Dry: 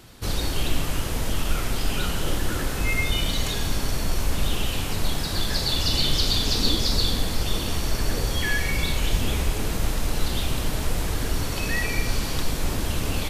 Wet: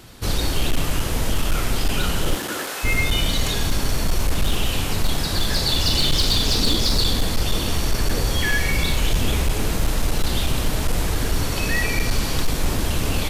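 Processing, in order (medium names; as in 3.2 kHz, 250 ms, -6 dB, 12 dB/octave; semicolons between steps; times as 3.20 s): overload inside the chain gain 16.5 dB; 2.34–2.83 s: high-pass 180 Hz -> 670 Hz 12 dB/octave; trim +4 dB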